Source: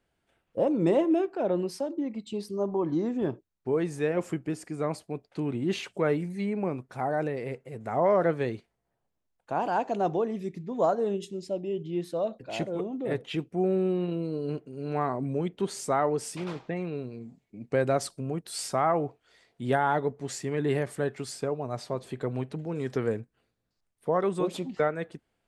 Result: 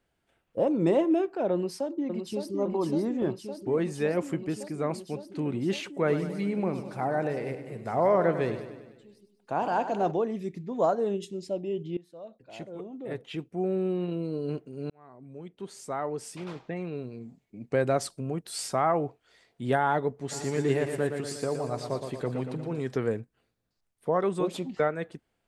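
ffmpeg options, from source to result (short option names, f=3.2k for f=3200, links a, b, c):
-filter_complex "[0:a]asplit=2[a][b];[b]afade=t=in:st=1.53:d=0.01,afade=t=out:st=2.53:d=0.01,aecho=0:1:560|1120|1680|2240|2800|3360|3920|4480|5040|5600|6160|6720:0.501187|0.426009|0.362108|0.307792|0.261623|0.222379|0.189023|0.160669|0.136569|0.116083|0.0986709|0.0838703[c];[a][c]amix=inputs=2:normalize=0,asplit=3[d][e][f];[d]afade=t=out:st=6.07:d=0.02[g];[e]aecho=1:1:100|200|300|400|500|600|700:0.282|0.163|0.0948|0.055|0.0319|0.0185|0.0107,afade=t=in:st=6.07:d=0.02,afade=t=out:st=10.1:d=0.02[h];[f]afade=t=in:st=10.1:d=0.02[i];[g][h][i]amix=inputs=3:normalize=0,asplit=3[j][k][l];[j]afade=t=out:st=20.31:d=0.02[m];[k]aecho=1:1:117|234|351|468|585|702|819:0.447|0.259|0.15|0.0872|0.0505|0.0293|0.017,afade=t=in:st=20.31:d=0.02,afade=t=out:st=22.79:d=0.02[n];[l]afade=t=in:st=22.79:d=0.02[o];[m][n][o]amix=inputs=3:normalize=0,asplit=3[p][q][r];[p]atrim=end=11.97,asetpts=PTS-STARTPTS,afade=t=out:st=11.966:d=0.004:c=hsin:silence=0.0891251[s];[q]atrim=start=11.97:end=14.9,asetpts=PTS-STARTPTS,afade=t=in:d=2.42:silence=0.0891251,afade=t=out:st=2.926:d=0.004:c=hsin[t];[r]atrim=start=14.9,asetpts=PTS-STARTPTS,afade=t=in:d=2.36[u];[s][t][u]concat=n=3:v=0:a=1"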